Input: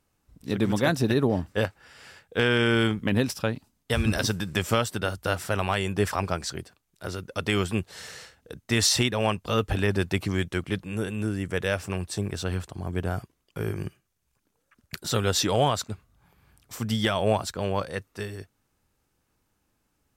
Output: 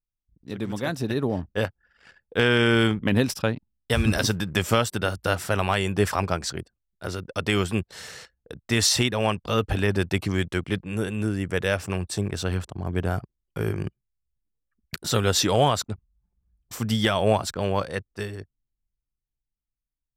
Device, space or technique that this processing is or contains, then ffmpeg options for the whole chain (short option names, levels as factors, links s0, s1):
voice memo with heavy noise removal: -af "anlmdn=0.0398,dynaudnorm=f=140:g=21:m=3.76,volume=0.473"